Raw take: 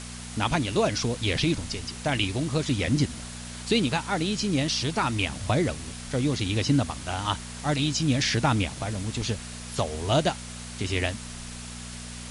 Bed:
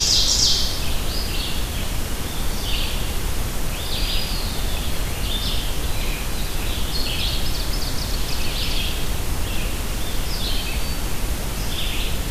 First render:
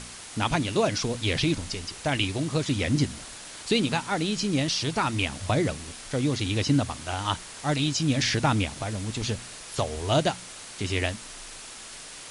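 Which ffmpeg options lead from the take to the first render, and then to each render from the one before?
-af "bandreject=f=60:t=h:w=4,bandreject=f=120:t=h:w=4,bandreject=f=180:t=h:w=4,bandreject=f=240:t=h:w=4"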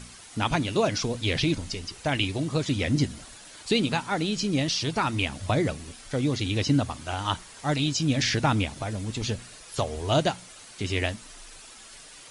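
-af "afftdn=nr=8:nf=-43"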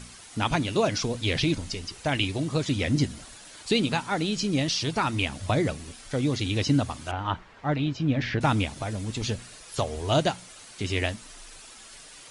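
-filter_complex "[0:a]asettb=1/sr,asplit=3[s0][s1][s2];[s0]atrim=end=7.114[s3];[s1]atrim=start=7.11:end=8.41,asetpts=PTS-STARTPTS,afade=t=in:d=0.004:c=qsin,afade=t=out:st=1.296:d=0.004:c=qsin,lowpass=2100[s4];[s2]atrim=start=8.406[s5];[s3][s4]acrossfade=d=0.004:c1=hsin:c2=qsin[s6];[s6][s5]acrossfade=d=0.004:c1=qsin:c2=hsin"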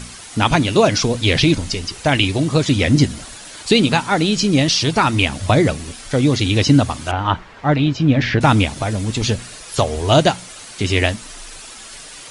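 -af "volume=3.35,alimiter=limit=0.891:level=0:latency=1"

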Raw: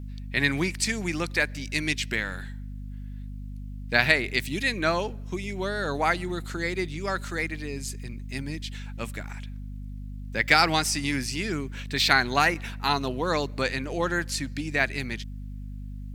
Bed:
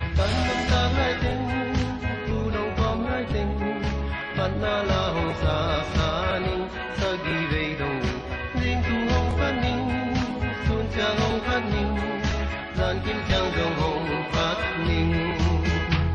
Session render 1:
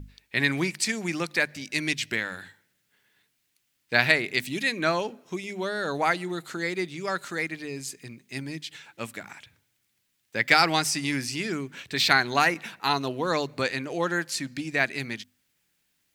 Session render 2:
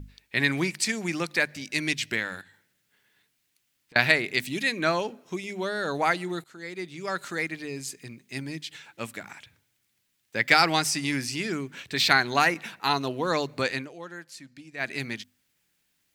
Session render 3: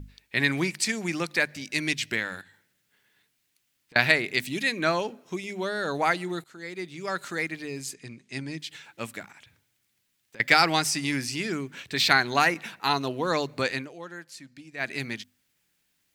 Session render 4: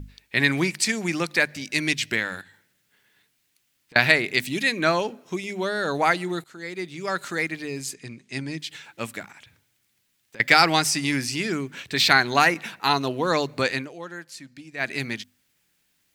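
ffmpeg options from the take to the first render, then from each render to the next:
-af "bandreject=f=50:t=h:w=6,bandreject=f=100:t=h:w=6,bandreject=f=150:t=h:w=6,bandreject=f=200:t=h:w=6,bandreject=f=250:t=h:w=6"
-filter_complex "[0:a]asettb=1/sr,asplit=3[s0][s1][s2];[s0]atrim=end=2.414[s3];[s1]atrim=start=2.41:end=3.96,asetpts=PTS-STARTPTS,afade=t=in:d=0.004:c=qsin,afade=t=out:st=1.546:d=0.004:c=qsin,acompressor=threshold=0.00282:ratio=12:attack=3.2:release=140:knee=1:detection=peak[s4];[s2]atrim=start=3.956[s5];[s3][s4]acrossfade=d=0.004:c1=hsin:c2=qsin[s6];[s6][s5]acrossfade=d=0.004:c1=qsin:c2=hsin,asplit=4[s7][s8][s9][s10];[s7]atrim=end=6.44,asetpts=PTS-STARTPTS,afade=t=out:st=6.436:d=0.004:c=hsin:silence=0.112202[s11];[s8]atrim=start=6.44:end=13.92,asetpts=PTS-STARTPTS,afade=t=in:d=0.82:silence=0.112202,afade=t=out:st=7.33:d=0.15:silence=0.199526[s12];[s9]atrim=start=13.92:end=14.77,asetpts=PTS-STARTPTS,volume=0.2[s13];[s10]atrim=start=14.77,asetpts=PTS-STARTPTS,afade=t=in:d=0.15:silence=0.199526[s14];[s11][s12][s13][s14]concat=n=4:v=0:a=1"
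-filter_complex "[0:a]asettb=1/sr,asplit=3[s0][s1][s2];[s0]atrim=end=7.944[s3];[s1]atrim=start=7.94:end=8.59,asetpts=PTS-STARTPTS,afade=t=in:d=0.004:c=qsin,afade=t=out:st=0.646:d=0.004:c=qsin,lowpass=f=8900:w=0.5412,lowpass=f=8900:w=1.3066[s4];[s2]atrim=start=8.586[s5];[s3][s4]acrossfade=d=0.004:c1=hsin:c2=qsin[s6];[s6][s5]acrossfade=d=0.004:c1=qsin:c2=hsin,asettb=1/sr,asplit=3[s7][s8][s9];[s7]atrim=end=9.254[s10];[s8]atrim=start=9.25:end=10.4,asetpts=PTS-STARTPTS,afade=t=in:d=0.004:c=qsin,afade=t=out:st=1.146:d=0.004:c=qsin,acompressor=threshold=0.00447:ratio=4:attack=3.2:release=140:knee=1:detection=peak[s11];[s9]atrim=start=10.396[s12];[s10][s11]acrossfade=d=0.004:c1=hsin:c2=qsin[s13];[s13][s12]acrossfade=d=0.004:c1=qsin:c2=hsin"
-af "volume=1.5,alimiter=limit=0.891:level=0:latency=1"

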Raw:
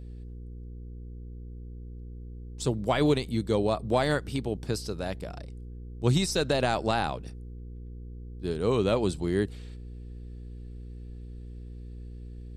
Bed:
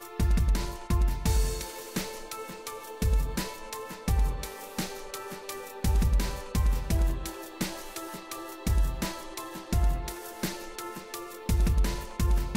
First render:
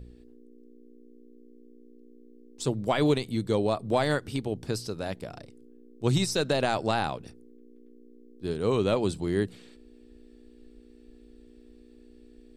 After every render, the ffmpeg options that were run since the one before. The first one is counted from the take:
-af "bandreject=f=60:t=h:w=4,bandreject=f=120:t=h:w=4,bandreject=f=180:t=h:w=4"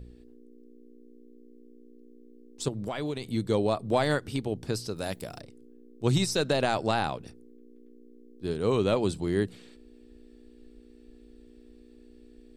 -filter_complex "[0:a]asettb=1/sr,asplit=3[s0][s1][s2];[s0]atrim=end=2.684[s3];[s1]atrim=start=2.68:end=3.33,asetpts=PTS-STARTPTS,afade=t=in:d=0.004:c=qsin,afade=t=out:st=0.646:d=0.004:c=qsin,acompressor=threshold=0.0316:ratio=4:attack=3.2:release=140:knee=1:detection=peak[s4];[s2]atrim=start=3.326[s5];[s3][s4]acrossfade=d=0.004:c1=hsin:c2=qsin[s6];[s6][s5]acrossfade=d=0.004:c1=qsin:c2=hsin,asettb=1/sr,asplit=3[s7][s8][s9];[s7]atrim=end=4.964[s10];[s8]atrim=start=4.96:end=5.41,asetpts=PTS-STARTPTS,afade=t=in:d=0.004:c=qsin,afade=t=out:st=0.446:d=0.004:c=qsin,aemphasis=mode=production:type=50fm[s11];[s9]atrim=start=5.406[s12];[s10][s11]acrossfade=d=0.004:c1=hsin:c2=qsin[s13];[s13][s12]acrossfade=d=0.004:c1=qsin:c2=hsin"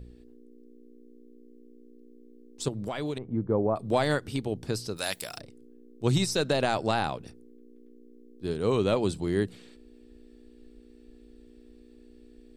-filter_complex "[0:a]asettb=1/sr,asplit=3[s0][s1][s2];[s0]atrim=end=3.184[s3];[s1]atrim=start=3.18:end=3.76,asetpts=PTS-STARTPTS,afade=t=in:d=0.004:c=qsin,afade=t=out:st=0.576:d=0.004:c=qsin,lowpass=f=1300:w=0.5412,lowpass=f=1300:w=1.3066[s4];[s2]atrim=start=3.756[s5];[s3][s4]acrossfade=d=0.004:c1=hsin:c2=qsin[s6];[s6][s5]acrossfade=d=0.004:c1=qsin:c2=hsin,asplit=3[s7][s8][s9];[s7]afade=t=out:st=4.96:d=0.02[s10];[s8]tiltshelf=f=730:g=-9.5,afade=t=in:st=4.96:d=0.02,afade=t=out:st=5.37:d=0.02[s11];[s9]afade=t=in:st=5.37:d=0.02[s12];[s10][s11][s12]amix=inputs=3:normalize=0"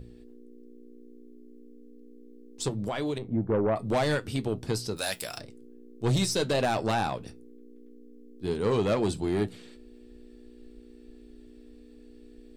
-af "aeval=exprs='0.251*(cos(1*acos(clip(val(0)/0.251,-1,1)))-cos(1*PI/2))+0.0562*(cos(5*acos(clip(val(0)/0.251,-1,1)))-cos(5*PI/2))':c=same,flanger=delay=8.6:depth=1.3:regen=-66:speed=0.2:shape=sinusoidal"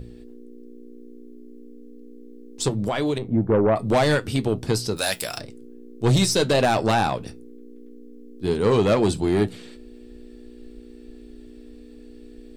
-af "volume=2.24"

